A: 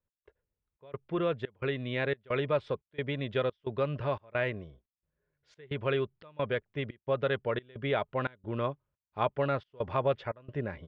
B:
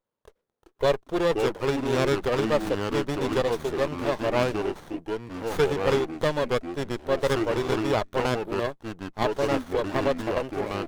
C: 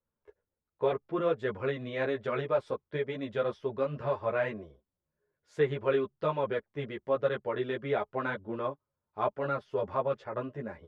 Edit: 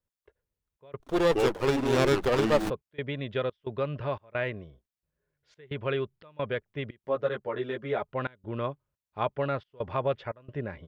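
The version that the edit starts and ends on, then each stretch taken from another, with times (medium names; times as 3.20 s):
A
1.00–2.70 s: from B
7.04–8.02 s: from C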